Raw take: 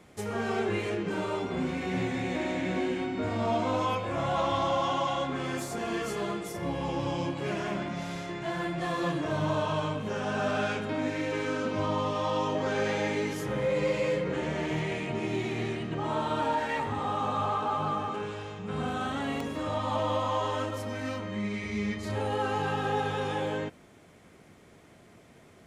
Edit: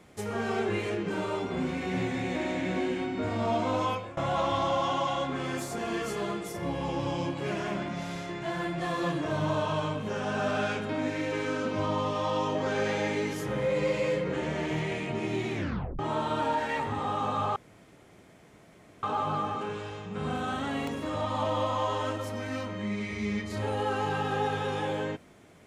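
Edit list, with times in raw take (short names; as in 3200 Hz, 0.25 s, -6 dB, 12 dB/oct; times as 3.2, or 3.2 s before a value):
3.88–4.17 fade out, to -18.5 dB
15.55 tape stop 0.44 s
17.56 insert room tone 1.47 s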